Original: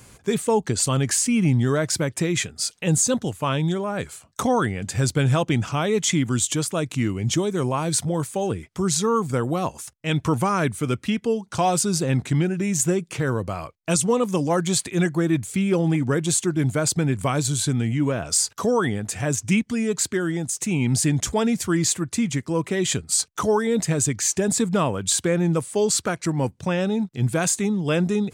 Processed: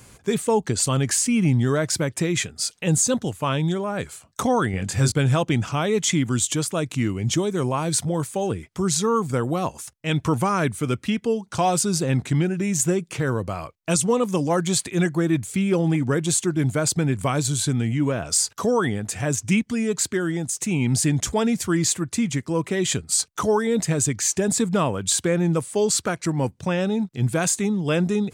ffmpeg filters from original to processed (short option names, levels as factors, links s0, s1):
-filter_complex "[0:a]asettb=1/sr,asplit=3[s0][s1][s2];[s0]atrim=end=4.714[s3];[s1]atrim=start=4.71:end=5.12,asetpts=PTS-STARTPTS,afade=t=in:d=0.004:c=qsin,afade=t=out:st=0.406:d=0.004:c=qsin,asplit=2[s4][s5];[s5]adelay=21,volume=0.708[s6];[s4][s6]amix=inputs=2:normalize=0,atrim=end_sample=18081[s7];[s2]atrim=start=5.116[s8];[s3][s7]acrossfade=d=0.004:c1=hsin:c2=qsin[s9];[s9][s8]acrossfade=d=0.004:c1=qsin:c2=hsin"